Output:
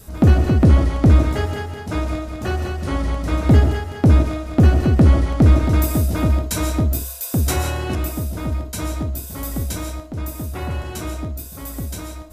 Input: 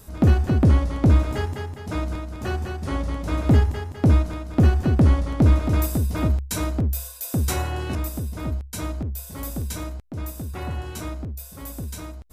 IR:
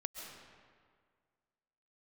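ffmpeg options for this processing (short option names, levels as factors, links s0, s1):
-filter_complex "[0:a]adynamicequalizer=threshold=0.00251:dfrequency=990:dqfactor=7.1:tfrequency=990:tqfactor=7.1:attack=5:release=100:ratio=0.375:range=2.5:mode=cutabove:tftype=bell[s0];[1:a]atrim=start_sample=2205,afade=t=out:st=0.23:d=0.01,atrim=end_sample=10584[s1];[s0][s1]afir=irnorm=-1:irlink=0,volume=2.24"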